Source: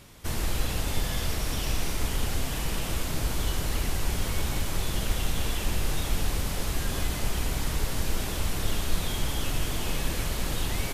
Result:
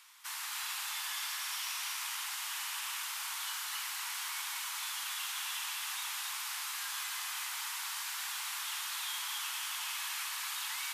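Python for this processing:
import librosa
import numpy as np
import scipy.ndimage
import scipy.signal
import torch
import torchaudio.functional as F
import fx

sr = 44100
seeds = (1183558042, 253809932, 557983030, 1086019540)

p1 = scipy.signal.sosfilt(scipy.signal.butter(8, 920.0, 'highpass', fs=sr, output='sos'), x)
p2 = p1 + fx.echo_single(p1, sr, ms=267, db=-4.5, dry=0)
y = F.gain(torch.from_numpy(p2), -3.5).numpy()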